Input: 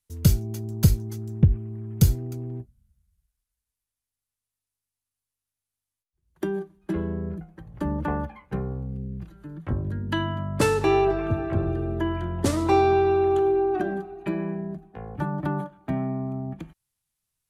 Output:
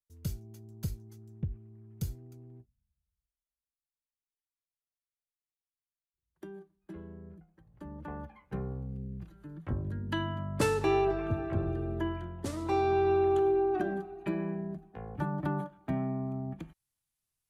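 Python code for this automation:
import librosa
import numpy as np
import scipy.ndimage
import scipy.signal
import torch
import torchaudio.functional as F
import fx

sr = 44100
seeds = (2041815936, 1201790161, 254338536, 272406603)

y = fx.gain(x, sr, db=fx.line((7.89, -17.5), (8.62, -6.5), (12.06, -6.5), (12.4, -14.0), (13.12, -5.0)))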